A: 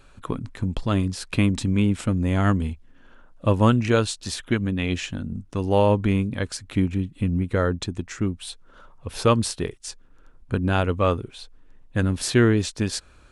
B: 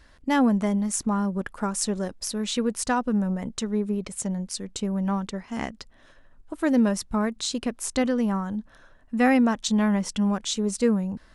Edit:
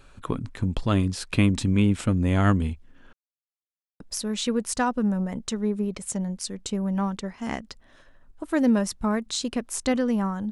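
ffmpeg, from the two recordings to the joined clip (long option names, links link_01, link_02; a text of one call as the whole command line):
ffmpeg -i cue0.wav -i cue1.wav -filter_complex "[0:a]apad=whole_dur=10.51,atrim=end=10.51,asplit=2[link_01][link_02];[link_01]atrim=end=3.13,asetpts=PTS-STARTPTS,afade=type=out:start_time=3.126:duration=0.004:curve=hsin[link_03];[link_02]atrim=start=3.13:end=4,asetpts=PTS-STARTPTS,volume=0[link_04];[1:a]atrim=start=2.1:end=8.61,asetpts=PTS-STARTPTS,afade=type=in:duration=0.004:curve=hsin[link_05];[link_03][link_04][link_05]concat=n=3:v=0:a=1" out.wav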